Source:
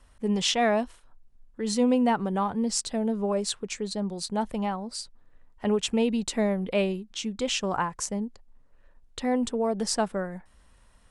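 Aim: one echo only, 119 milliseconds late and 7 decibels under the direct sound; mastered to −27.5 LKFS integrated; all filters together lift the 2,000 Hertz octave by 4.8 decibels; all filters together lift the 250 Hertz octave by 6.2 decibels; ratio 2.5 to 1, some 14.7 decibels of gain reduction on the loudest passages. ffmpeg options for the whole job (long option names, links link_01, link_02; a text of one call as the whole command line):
ffmpeg -i in.wav -af "equalizer=frequency=250:width_type=o:gain=7,equalizer=frequency=2000:width_type=o:gain=6,acompressor=threshold=-37dB:ratio=2.5,aecho=1:1:119:0.447,volume=7dB" out.wav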